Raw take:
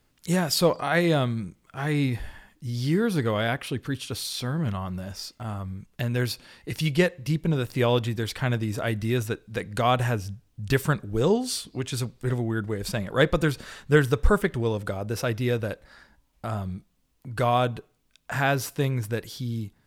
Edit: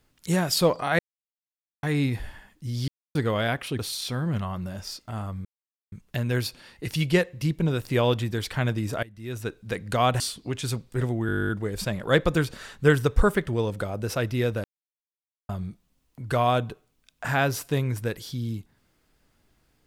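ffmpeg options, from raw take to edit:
-filter_complex "[0:a]asplit=22[a][b][c][d][e][f][g][h][i][j][k][l][m][n][o][p][q][r][s][t][u][v];[a]atrim=end=0.99,asetpts=PTS-STARTPTS,afade=t=out:st=0.986:d=0.004:c=hsin[w];[b]atrim=start=0.99:end=1.83,asetpts=PTS-STARTPTS,volume=0[x];[c]atrim=start=1.83:end=2.88,asetpts=PTS-STARTPTS,afade=t=in:d=0.004:c=hsin,afade=t=out:st=1.046:d=0.004:c=hsin[y];[d]atrim=start=2.88:end=3.15,asetpts=PTS-STARTPTS,volume=0[z];[e]atrim=start=3.15:end=3.792,asetpts=PTS-STARTPTS,afade=t=in:d=0.004:c=hsin[aa];[f]atrim=start=4.108:end=5.77,asetpts=PTS-STARTPTS,afade=t=out:st=1.658:d=0.004:c=hsin,apad=pad_dur=0.47[ab];[g]atrim=start=5.77:end=8.88,asetpts=PTS-STARTPTS,afade=t=in:d=0.004:c=hsin,afade=t=out:st=3.106:d=0.004:c=hsin:silence=0.0841395[ac];[h]atrim=start=8.88:end=10.052,asetpts=PTS-STARTPTS,afade=t=in:d=0.5:c=qua:silence=0.0841395[ad];[i]atrim=start=11.488:end=12.582[ae];[j]atrim=start=12.558:end=12.582[af];[k]atrim=start=12.558:end=12.582[ag];[l]atrim=start=12.558:end=12.582[ah];[m]atrim=start=12.558:end=12.582[ai];[n]atrim=start=12.558:end=12.582[aj];[o]atrim=start=12.558:end=12.582[ak];[p]atrim=start=12.558:end=12.582[al];[q]atrim=start=12.558:end=12.582[am];[r]atrim=start=12.558:end=12.582[an];[s]atrim=start=12.558:end=12.582[ao];[t]atrim=start=12.558:end=15.71,asetpts=PTS-STARTPTS,afade=t=out:st=3.148:d=0.004:c=hsin[ap];[u]atrim=start=15.71:end=16.56,asetpts=PTS-STARTPTS,volume=0[aq];[v]atrim=start=16.56,asetpts=PTS-STARTPTS,afade=t=in:d=0.004:c=hsin[ar];[w][x][y][z][aa]concat=n=5:v=0:a=1[as];[ab][ac][ad]concat=n=3:v=0:a=1[at];[as][at]acrossfade=d=0.004:c1=hsin:c2=hsin[au];[au][ae]acrossfade=d=0.004:c1=hsin:c2=hsin[av];[av][af]acrossfade=d=0.004:c1=hsin:c2=hsin[aw];[aw][ag]acrossfade=d=0.004:c1=hsin:c2=hsin[ax];[ax][ah]acrossfade=d=0.004:c1=hsin:c2=hsin[ay];[ay][ai]acrossfade=d=0.004:c1=hsin:c2=hsin[az];[az][aj]acrossfade=d=0.004:c1=hsin:c2=hsin[ba];[ba][ak]acrossfade=d=0.004:c1=hsin:c2=hsin[bb];[bb][al]acrossfade=d=0.004:c1=hsin:c2=hsin[bc];[bc][am]acrossfade=d=0.004:c1=hsin:c2=hsin[bd];[bd][an]acrossfade=d=0.004:c1=hsin:c2=hsin[be];[be][ao]acrossfade=d=0.004:c1=hsin:c2=hsin[bf];[ap][aq][ar]concat=n=3:v=0:a=1[bg];[bf][bg]acrossfade=d=0.004:c1=hsin:c2=hsin"

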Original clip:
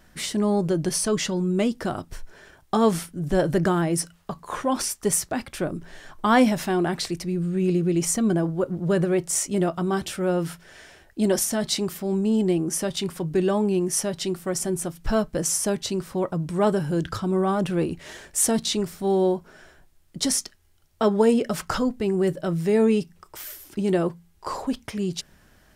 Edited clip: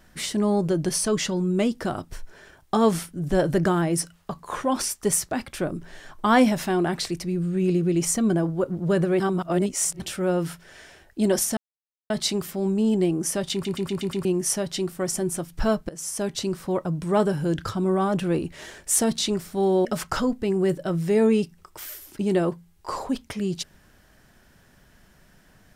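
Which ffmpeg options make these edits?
-filter_complex "[0:a]asplit=12[a][b][c][d][e][f][g][h][i][j][k][l];[a]atrim=end=9.202[m];[b]atrim=start=9.198:end=10.002,asetpts=PTS-STARTPTS,areverse[n];[c]atrim=start=9.998:end=11.57,asetpts=PTS-STARTPTS,afade=t=out:st=1.568:d=0.004:c=hsin,apad=pad_dur=0.53[o];[d]atrim=start=11.57:end=13.122,asetpts=PTS-STARTPTS,afade=t=in:d=0.004:c=hsin[p];[e]atrim=start=12.998:end=13.122[q];[f]atrim=start=12.998:end=13.122[r];[g]atrim=start=12.998:end=13.122[s];[h]atrim=start=12.998:end=13.122[t];[i]atrim=start=12.998:end=13.122[u];[j]atrim=start=13.718:end=15.36,asetpts=PTS-STARTPTS,afade=t=out:st=1.638:d=0.004:c=hsin:silence=0.1[v];[k]atrim=start=15.36:end=19.322,asetpts=PTS-STARTPTS,afade=t=in:d=0.5:silence=0.1[w];[l]atrim=start=21.428[x];[m][n]acrossfade=d=0.004:c1=hsin:c2=hsin[y];[o][p]concat=n=2:v=0:a=1[z];[y][z]acrossfade=d=0.004:c1=hsin:c2=hsin[aa];[aa][q]acrossfade=d=0.004:c1=hsin:c2=hsin[ab];[ab][r]acrossfade=d=0.004:c1=hsin:c2=hsin[ac];[ac][s]acrossfade=d=0.004:c1=hsin:c2=hsin[ad];[ad][t]acrossfade=d=0.004:c1=hsin:c2=hsin[ae];[ae][u]acrossfade=d=0.004:c1=hsin:c2=hsin[af];[v][w]concat=n=2:v=0:a=1[ag];[af][ag]acrossfade=d=0.004:c1=hsin:c2=hsin[ah];[ah][x]acrossfade=d=0.004:c1=hsin:c2=hsin"

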